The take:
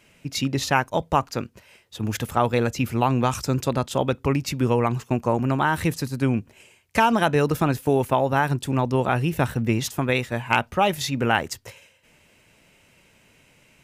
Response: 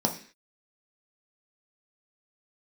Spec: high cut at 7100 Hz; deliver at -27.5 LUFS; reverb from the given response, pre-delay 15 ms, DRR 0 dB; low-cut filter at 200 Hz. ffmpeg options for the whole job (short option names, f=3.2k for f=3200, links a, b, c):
-filter_complex "[0:a]highpass=200,lowpass=7.1k,asplit=2[a][b];[1:a]atrim=start_sample=2205,adelay=15[c];[b][c]afir=irnorm=-1:irlink=0,volume=-9.5dB[d];[a][d]amix=inputs=2:normalize=0,volume=-9dB"